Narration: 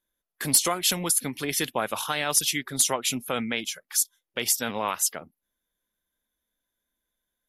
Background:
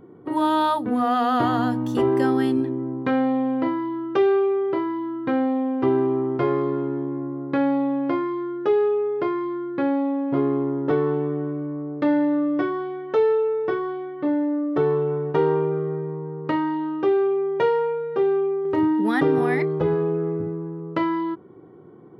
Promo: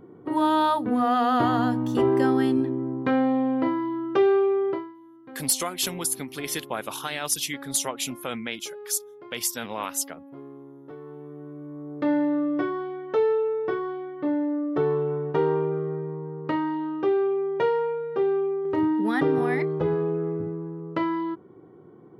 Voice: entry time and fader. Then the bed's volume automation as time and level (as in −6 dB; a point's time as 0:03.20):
4.95 s, −3.5 dB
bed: 0:04.70 −1 dB
0:04.95 −21 dB
0:10.97 −21 dB
0:12.10 −3 dB